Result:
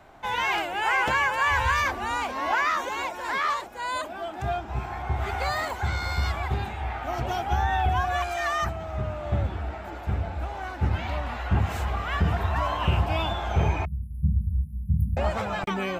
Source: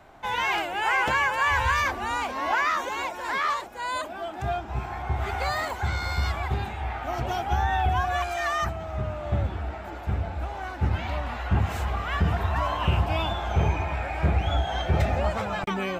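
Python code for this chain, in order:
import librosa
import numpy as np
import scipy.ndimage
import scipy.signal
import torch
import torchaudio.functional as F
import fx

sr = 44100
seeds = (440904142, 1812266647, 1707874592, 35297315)

y = fx.brickwall_bandstop(x, sr, low_hz=240.0, high_hz=9600.0, at=(13.85, 15.17))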